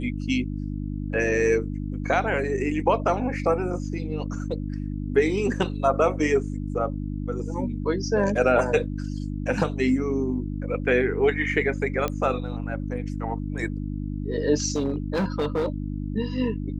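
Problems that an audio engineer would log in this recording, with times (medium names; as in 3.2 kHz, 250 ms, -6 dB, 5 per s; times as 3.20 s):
hum 50 Hz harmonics 6 -30 dBFS
12.08 s: pop -13 dBFS
14.72–15.68 s: clipped -20 dBFS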